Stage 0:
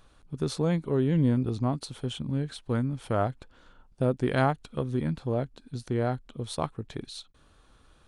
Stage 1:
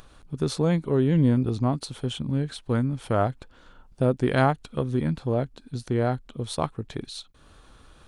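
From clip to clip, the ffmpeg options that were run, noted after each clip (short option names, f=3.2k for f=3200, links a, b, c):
-af "acompressor=mode=upward:threshold=-48dB:ratio=2.5,volume=3.5dB"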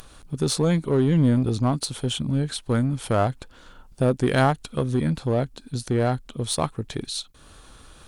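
-filter_complex "[0:a]aemphasis=mode=production:type=cd,asplit=2[a][b];[b]volume=25.5dB,asoftclip=hard,volume=-25.5dB,volume=-5dB[c];[a][c]amix=inputs=2:normalize=0"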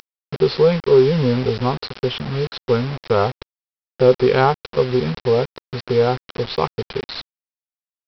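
-af "superequalizer=6b=0.316:7b=3.98:9b=2.24:10b=1.78:12b=1.78,aresample=11025,acrusher=bits=4:mix=0:aa=0.000001,aresample=44100"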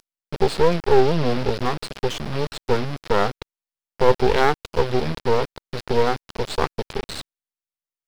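-af "aeval=exprs='max(val(0),0)':c=same,volume=1.5dB"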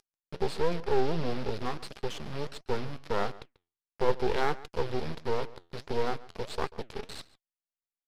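-filter_complex "[0:a]aresample=32000,aresample=44100,asplit=2[a][b];[b]adelay=139.9,volume=-19dB,highshelf=f=4k:g=-3.15[c];[a][c]amix=inputs=2:normalize=0,flanger=delay=2.4:depth=9.4:regen=79:speed=1.5:shape=sinusoidal,volume=-6.5dB"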